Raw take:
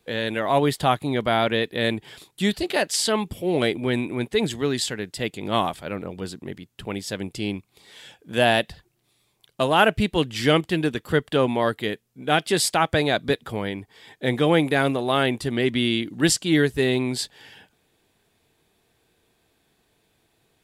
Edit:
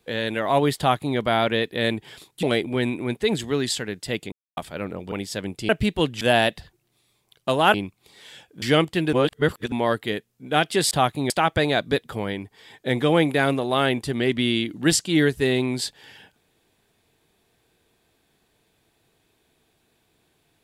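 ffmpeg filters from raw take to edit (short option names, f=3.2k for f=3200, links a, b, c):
-filter_complex "[0:a]asplit=13[a][b][c][d][e][f][g][h][i][j][k][l][m];[a]atrim=end=2.432[n];[b]atrim=start=3.538:end=5.43,asetpts=PTS-STARTPTS,afade=t=out:st=1.888:d=0.004:c=hsin[o];[c]atrim=start=5.43:end=5.68,asetpts=PTS-STARTPTS,volume=0[p];[d]atrim=start=5.68:end=6.232,asetpts=PTS-STARTPTS,afade=t=in:d=0.004:c=hsin[q];[e]atrim=start=6.878:end=7.452[r];[f]atrim=start=9.858:end=10.382[s];[g]atrim=start=8.328:end=9.862[t];[h]atrim=start=7.448:end=8.332[u];[i]atrim=start=10.378:end=10.892[v];[j]atrim=start=10.888:end=11.482,asetpts=PTS-STARTPTS,areverse[w];[k]atrim=start=11.478:end=12.672[x];[l]atrim=start=0.778:end=1.172[y];[m]atrim=start=12.668[z];[o][p][q]concat=n=3:v=0:a=1[aa];[n][aa]acrossfade=d=0.004:c1=hsin:c2=hsin[ab];[ab][r]acrossfade=d=0.004:c1=hsin:c2=hsin[ac];[ac][s]acrossfade=d=0.004:c1=hsin:c2=hsin[ad];[ad][t]acrossfade=d=0.004:c1=hsin:c2=hsin[ae];[ae][u]acrossfade=d=0.004:c1=hsin:c2=hsin[af];[af][v]acrossfade=d=0.004:c1=hsin:c2=hsin[ag];[ag][w]acrossfade=d=0.004:c1=hsin:c2=hsin[ah];[ah][x]acrossfade=d=0.004:c1=hsin:c2=hsin[ai];[ai][y]acrossfade=d=0.004:c1=hsin:c2=hsin[aj];[aj][z]acrossfade=d=0.004:c1=hsin:c2=hsin"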